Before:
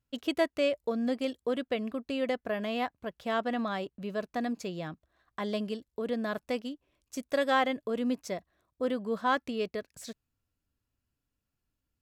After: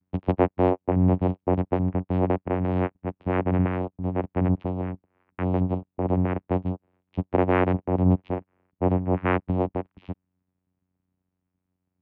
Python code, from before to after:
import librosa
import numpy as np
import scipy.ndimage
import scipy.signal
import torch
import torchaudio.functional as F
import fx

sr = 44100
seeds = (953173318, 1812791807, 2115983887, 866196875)

y = fx.vocoder(x, sr, bands=4, carrier='saw', carrier_hz=91.3)
y = scipy.signal.sosfilt(scipy.signal.butter(4, 2600.0, 'lowpass', fs=sr, output='sos'), y)
y = y * librosa.db_to_amplitude(8.5)